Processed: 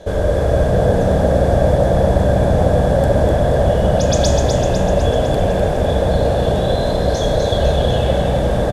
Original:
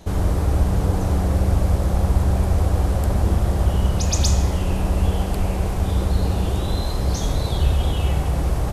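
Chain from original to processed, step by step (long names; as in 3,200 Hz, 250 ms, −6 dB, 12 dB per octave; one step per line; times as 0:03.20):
low-pass filter 9,900 Hz 12 dB per octave
parametric band 470 Hz +9.5 dB 0.45 octaves
hollow resonant body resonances 590/1,600/3,400 Hz, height 15 dB, ringing for 30 ms
on a send: echo with shifted repeats 251 ms, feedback 57%, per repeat +59 Hz, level −5.5 dB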